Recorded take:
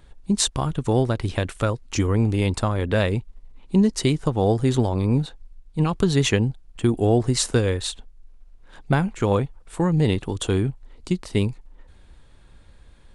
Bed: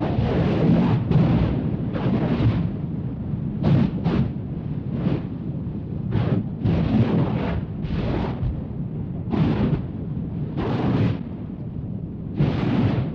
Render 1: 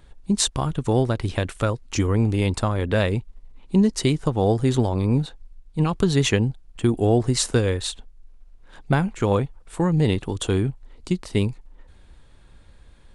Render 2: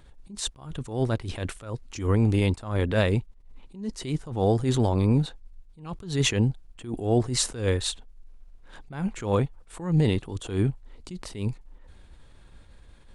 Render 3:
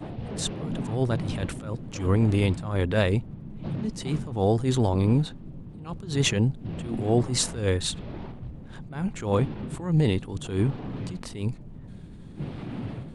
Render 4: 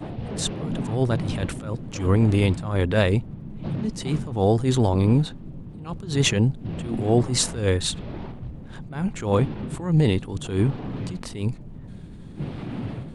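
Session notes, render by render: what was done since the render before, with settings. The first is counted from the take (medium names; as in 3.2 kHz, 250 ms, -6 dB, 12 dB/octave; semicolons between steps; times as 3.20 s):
no audible change
peak limiter -12.5 dBFS, peak gain reduction 7.5 dB; attacks held to a fixed rise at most 120 dB/s
add bed -14 dB
trim +3 dB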